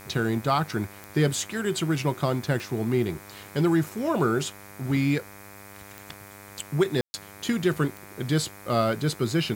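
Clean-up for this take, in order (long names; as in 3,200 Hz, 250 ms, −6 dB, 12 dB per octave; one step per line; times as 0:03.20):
click removal
hum removal 100.3 Hz, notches 25
ambience match 0:07.01–0:07.14
noise reduction from a noise print 25 dB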